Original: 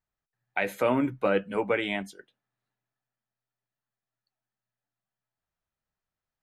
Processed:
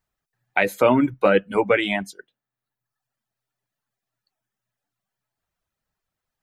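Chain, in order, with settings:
reverb reduction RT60 0.92 s
level +8.5 dB

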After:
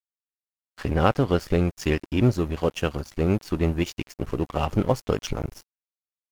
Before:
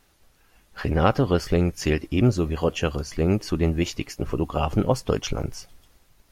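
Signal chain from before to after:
dead-zone distortion −36.5 dBFS

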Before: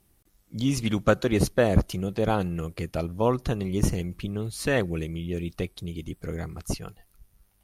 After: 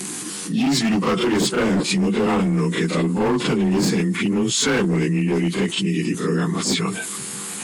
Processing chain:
partials spread apart or drawn together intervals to 92%
Butterworth high-pass 170 Hz 36 dB per octave
in parallel at +1.5 dB: brickwall limiter −21 dBFS, peak gain reduction 10 dB
on the sum: parametric band 620 Hz −14.5 dB 0.43 octaves
gain into a clipping stage and back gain 23 dB
on a send: backwards echo 36 ms −11.5 dB
on the sum: envelope flattener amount 70%
level +5 dB

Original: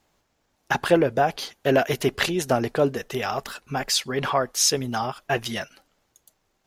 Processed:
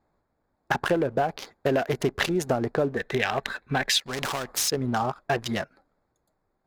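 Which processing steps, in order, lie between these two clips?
adaptive Wiener filter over 15 samples
0:02.97–0:03.99: gain on a spectral selection 1,500–4,200 Hz +10 dB
leveller curve on the samples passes 1
downward compressor 5 to 1, threshold −21 dBFS, peak gain reduction 10.5 dB
0:04.06–0:04.68: every bin compressed towards the loudest bin 2 to 1

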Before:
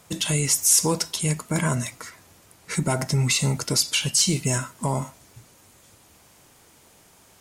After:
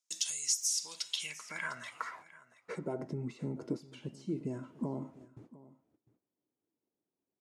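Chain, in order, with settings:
noise gate −49 dBFS, range −33 dB
downward compressor 5 to 1, threshold −34 dBFS, peak gain reduction 18 dB
band-pass filter sweep 5,900 Hz → 310 Hz, 0:00.59–0:03.16
single-tap delay 702 ms −19 dB
level +8 dB

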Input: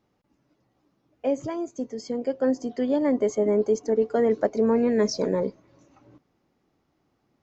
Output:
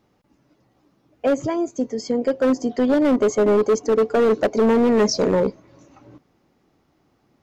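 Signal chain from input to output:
hard clipping −20.5 dBFS, distortion −11 dB
level +7.5 dB

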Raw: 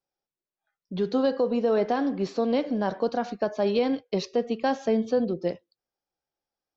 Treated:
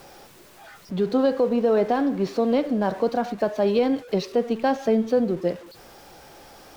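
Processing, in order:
converter with a step at zero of −40 dBFS
high-shelf EQ 3,400 Hz −6.5 dB
level +3 dB

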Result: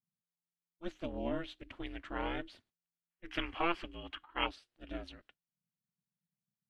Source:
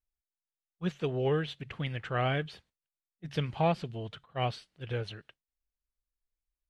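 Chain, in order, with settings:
0:03.11–0:04.46: gain on a spectral selection 900–3,200 Hz +12 dB
0:04.46–0:04.89: notch comb filter 1,100 Hz
ring modulation 170 Hz
level −5 dB

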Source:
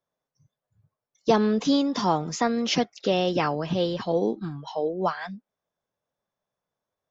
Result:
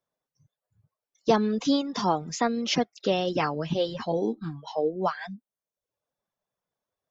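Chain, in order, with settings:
reverb reduction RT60 0.65 s
0:03.39–0:04.96: double-tracking delay 13 ms −8.5 dB
level −1 dB

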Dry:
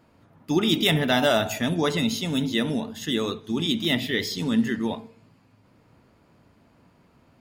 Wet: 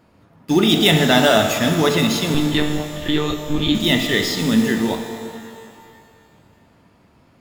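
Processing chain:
in parallel at −9 dB: bit reduction 5 bits
0:02.34–0:03.75: on the sum: one-pitch LPC vocoder at 8 kHz 150 Hz
reverb with rising layers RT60 2.1 s, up +12 semitones, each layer −8 dB, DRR 6 dB
level +3.5 dB

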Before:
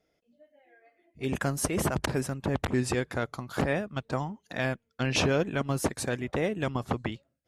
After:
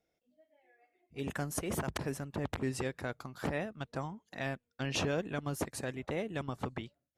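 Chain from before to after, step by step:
wrong playback speed 24 fps film run at 25 fps
level −7.5 dB

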